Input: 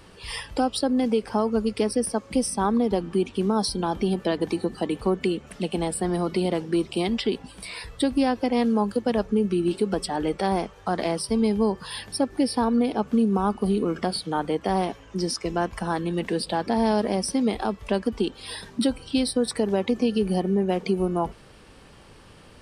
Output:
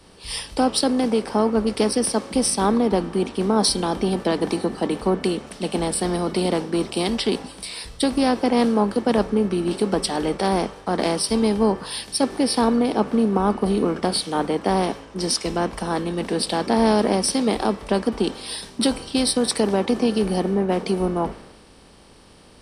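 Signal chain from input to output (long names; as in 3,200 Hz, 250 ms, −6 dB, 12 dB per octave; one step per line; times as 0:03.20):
compressor on every frequency bin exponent 0.6
multiband upward and downward expander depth 100%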